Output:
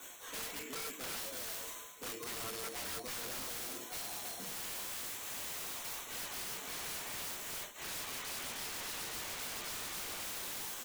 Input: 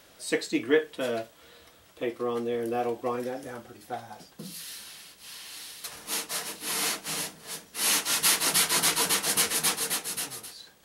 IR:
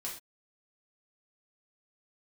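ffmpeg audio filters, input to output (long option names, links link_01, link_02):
-filter_complex "[0:a]acrossover=split=540[link_01][link_02];[link_02]acrusher=samples=9:mix=1:aa=0.000001[link_03];[link_01][link_03]amix=inputs=2:normalize=0,aphaser=in_gain=1:out_gain=1:delay=5:decay=0.42:speed=0.99:type=triangular,aecho=1:1:329:0.237,acrossover=split=5100[link_04][link_05];[link_05]acompressor=threshold=-51dB:ratio=4:attack=1:release=60[link_06];[link_04][link_06]amix=inputs=2:normalize=0,bass=frequency=250:gain=-8,treble=frequency=4000:gain=11,afreqshift=-18,highshelf=frequency=2600:gain=6,areverse,acompressor=threshold=-39dB:ratio=12,areverse[link_07];[1:a]atrim=start_sample=2205[link_08];[link_07][link_08]afir=irnorm=-1:irlink=0,aeval=exprs='(mod(89.1*val(0)+1,2)-1)/89.1':channel_layout=same,volume=2.5dB"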